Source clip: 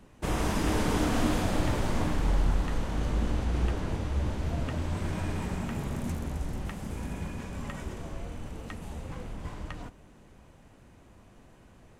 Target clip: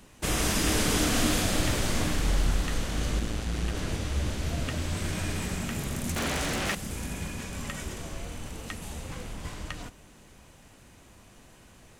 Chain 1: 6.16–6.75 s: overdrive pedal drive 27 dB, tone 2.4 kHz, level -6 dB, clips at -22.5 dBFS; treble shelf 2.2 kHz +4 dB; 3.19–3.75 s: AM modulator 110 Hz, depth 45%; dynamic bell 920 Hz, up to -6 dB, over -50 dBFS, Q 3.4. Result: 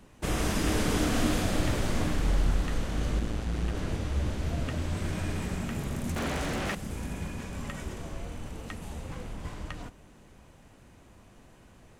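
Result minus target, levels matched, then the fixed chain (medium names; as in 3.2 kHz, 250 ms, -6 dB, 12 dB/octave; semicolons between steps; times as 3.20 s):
4 kHz band -4.5 dB
6.16–6.75 s: overdrive pedal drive 27 dB, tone 2.4 kHz, level -6 dB, clips at -22.5 dBFS; treble shelf 2.2 kHz +12.5 dB; 3.19–3.75 s: AM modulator 110 Hz, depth 45%; dynamic bell 920 Hz, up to -6 dB, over -50 dBFS, Q 3.4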